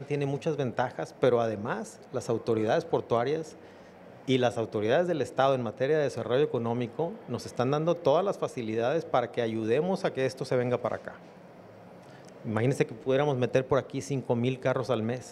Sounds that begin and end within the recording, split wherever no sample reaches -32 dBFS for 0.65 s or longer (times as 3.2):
4.28–11.08